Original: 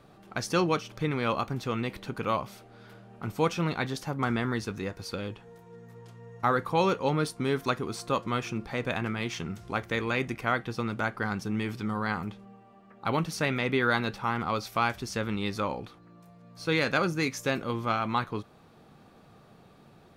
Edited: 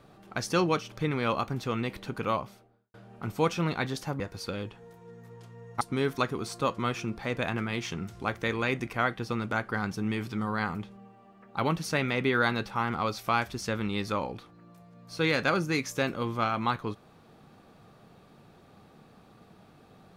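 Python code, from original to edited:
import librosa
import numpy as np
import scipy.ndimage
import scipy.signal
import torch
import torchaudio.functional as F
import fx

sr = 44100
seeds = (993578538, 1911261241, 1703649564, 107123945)

y = fx.studio_fade_out(x, sr, start_s=2.25, length_s=0.69)
y = fx.edit(y, sr, fx.cut(start_s=4.2, length_s=0.65),
    fx.cut(start_s=6.46, length_s=0.83), tone=tone)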